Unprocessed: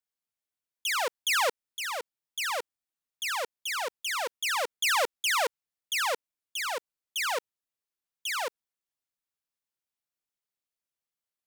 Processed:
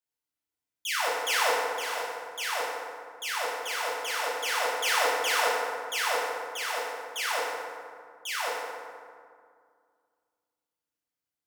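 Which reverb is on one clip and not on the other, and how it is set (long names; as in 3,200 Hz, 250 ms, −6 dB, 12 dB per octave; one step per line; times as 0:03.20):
feedback delay network reverb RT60 2.1 s, low-frequency decay 1.35×, high-frequency decay 0.5×, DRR −6.5 dB
level −5.5 dB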